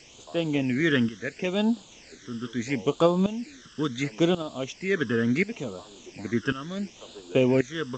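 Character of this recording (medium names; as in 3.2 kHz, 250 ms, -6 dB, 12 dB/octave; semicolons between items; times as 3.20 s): tremolo saw up 0.92 Hz, depth 85%; a quantiser's noise floor 8-bit, dither triangular; phasing stages 12, 0.73 Hz, lowest notch 730–2000 Hz; G.722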